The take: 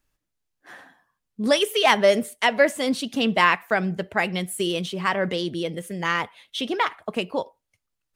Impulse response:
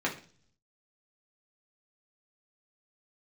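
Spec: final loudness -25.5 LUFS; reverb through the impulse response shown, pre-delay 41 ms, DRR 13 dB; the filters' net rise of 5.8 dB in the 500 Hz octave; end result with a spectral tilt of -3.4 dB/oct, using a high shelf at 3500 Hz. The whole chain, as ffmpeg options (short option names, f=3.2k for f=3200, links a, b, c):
-filter_complex "[0:a]equalizer=f=500:t=o:g=7,highshelf=f=3.5k:g=7,asplit=2[a][b];[1:a]atrim=start_sample=2205,adelay=41[c];[b][c]afir=irnorm=-1:irlink=0,volume=-21.5dB[d];[a][d]amix=inputs=2:normalize=0,volume=-6.5dB"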